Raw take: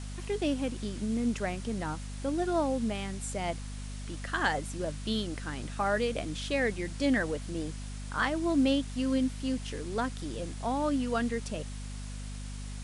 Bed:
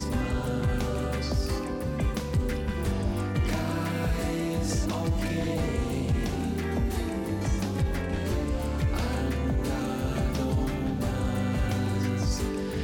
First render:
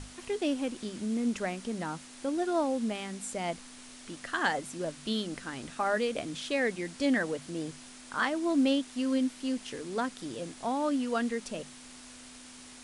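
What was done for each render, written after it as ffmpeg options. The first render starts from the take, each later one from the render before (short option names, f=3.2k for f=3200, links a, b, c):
-af "bandreject=f=50:t=h:w=6,bandreject=f=100:t=h:w=6,bandreject=f=150:t=h:w=6,bandreject=f=200:t=h:w=6"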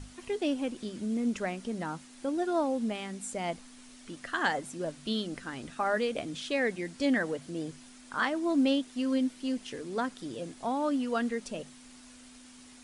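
-af "afftdn=nr=6:nf=-50"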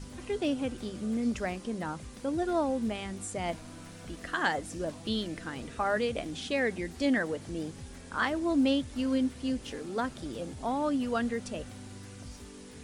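-filter_complex "[1:a]volume=-19dB[a];[0:a][a]amix=inputs=2:normalize=0"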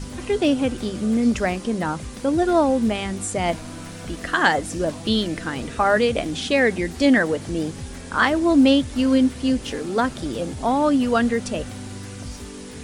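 -af "volume=11dB"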